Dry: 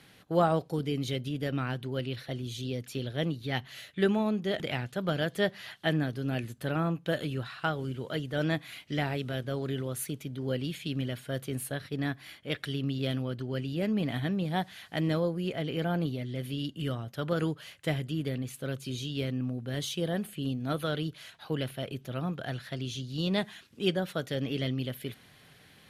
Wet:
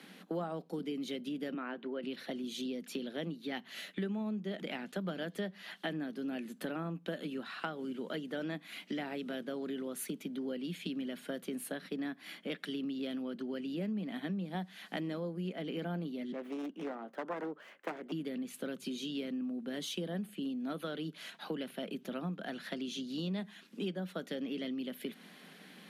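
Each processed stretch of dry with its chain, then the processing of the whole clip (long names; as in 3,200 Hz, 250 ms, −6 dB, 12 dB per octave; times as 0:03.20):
0:01.54–0:02.03: band-pass filter 320–2,100 Hz + notch filter 780 Hz, Q 20
0:16.32–0:18.12: phase distortion by the signal itself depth 0.72 ms + three-way crossover with the lows and the highs turned down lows −22 dB, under 290 Hz, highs −18 dB, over 2,000 Hz
whole clip: Butterworth high-pass 180 Hz 72 dB per octave; bass and treble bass +10 dB, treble −3 dB; downward compressor 5 to 1, threshold −39 dBFS; level +2.5 dB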